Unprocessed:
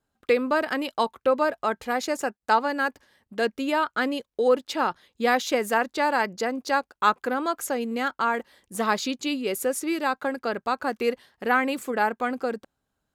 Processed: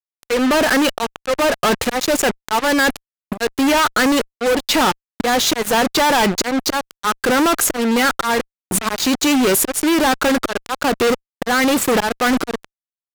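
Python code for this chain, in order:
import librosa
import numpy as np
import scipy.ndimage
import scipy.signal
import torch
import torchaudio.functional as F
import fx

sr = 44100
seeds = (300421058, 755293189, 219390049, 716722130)

y = fx.auto_swell(x, sr, attack_ms=406.0)
y = fx.fuzz(y, sr, gain_db=47.0, gate_db=-42.0)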